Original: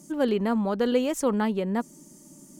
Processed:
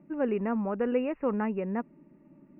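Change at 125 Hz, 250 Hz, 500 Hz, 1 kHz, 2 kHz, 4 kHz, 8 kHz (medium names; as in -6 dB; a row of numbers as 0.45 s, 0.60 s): no reading, -4.5 dB, -4.0 dB, -4.5 dB, -4.5 dB, under -15 dB, under -40 dB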